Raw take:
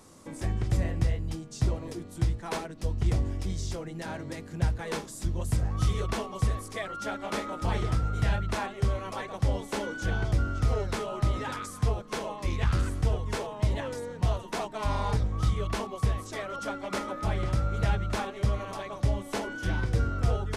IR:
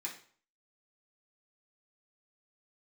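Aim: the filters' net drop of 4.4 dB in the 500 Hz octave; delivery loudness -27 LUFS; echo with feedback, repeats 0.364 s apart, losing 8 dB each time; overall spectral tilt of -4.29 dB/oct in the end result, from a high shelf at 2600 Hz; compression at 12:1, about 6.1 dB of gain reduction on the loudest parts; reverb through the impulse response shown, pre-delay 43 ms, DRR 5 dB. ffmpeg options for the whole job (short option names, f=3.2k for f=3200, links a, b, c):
-filter_complex "[0:a]equalizer=f=500:t=o:g=-6,highshelf=f=2.6k:g=7,acompressor=threshold=-26dB:ratio=12,aecho=1:1:364|728|1092|1456|1820:0.398|0.159|0.0637|0.0255|0.0102,asplit=2[a][b];[1:a]atrim=start_sample=2205,adelay=43[c];[b][c]afir=irnorm=-1:irlink=0,volume=-5dB[d];[a][d]amix=inputs=2:normalize=0,volume=5.5dB"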